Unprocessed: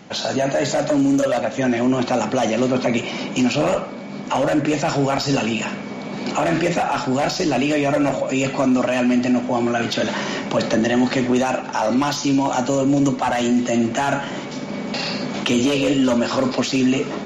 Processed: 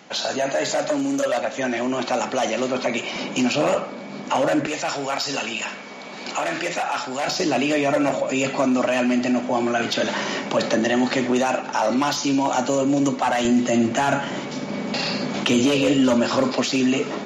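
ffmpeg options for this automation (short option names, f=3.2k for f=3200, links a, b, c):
-af "asetnsamples=n=441:p=0,asendcmd='3.16 highpass f 250;4.67 highpass f 1000;7.28 highpass f 260;13.45 highpass f 75;16.44 highpass f 220',highpass=f=530:p=1"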